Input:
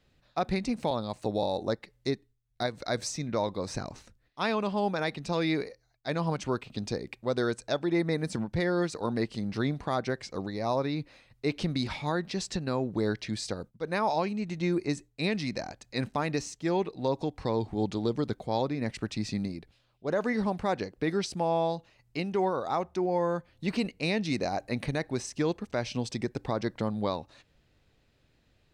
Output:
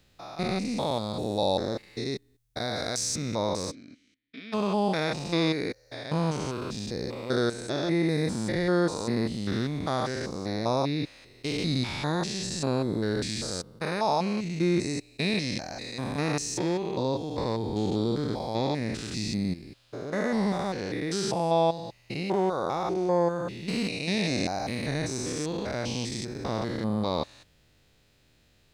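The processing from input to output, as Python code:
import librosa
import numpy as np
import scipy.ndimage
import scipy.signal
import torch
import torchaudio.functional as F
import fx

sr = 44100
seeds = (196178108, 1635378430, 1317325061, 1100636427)

y = fx.spec_steps(x, sr, hold_ms=200)
y = fx.vowel_filter(y, sr, vowel='i', at=(3.7, 4.52), fade=0.02)
y = fx.high_shelf(y, sr, hz=4100.0, db=10.0)
y = y * 10.0 ** (4.5 / 20.0)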